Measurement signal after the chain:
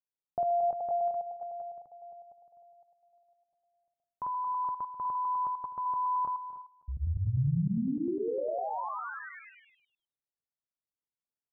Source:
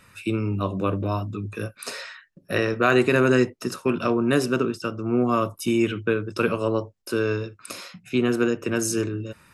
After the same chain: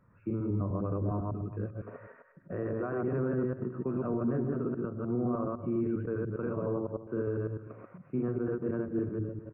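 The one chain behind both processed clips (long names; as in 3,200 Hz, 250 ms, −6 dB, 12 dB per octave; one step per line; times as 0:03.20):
delay that plays each chunk backwards 101 ms, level −0.5 dB
parametric band 140 Hz +6.5 dB 0.48 octaves
brickwall limiter −13.5 dBFS
Gaussian smoothing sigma 6.9 samples
on a send: single-tap delay 255 ms −15 dB
on the sum: level −8.5 dB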